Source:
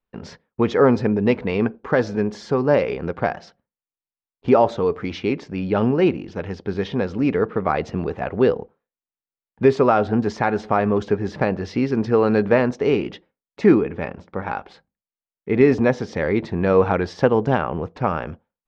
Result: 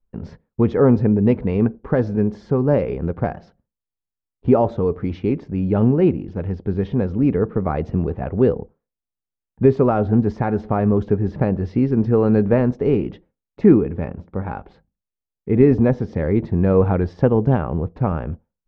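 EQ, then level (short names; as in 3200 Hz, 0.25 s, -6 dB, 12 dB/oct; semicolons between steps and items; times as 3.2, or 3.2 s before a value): tilt -4 dB/oct; -5.0 dB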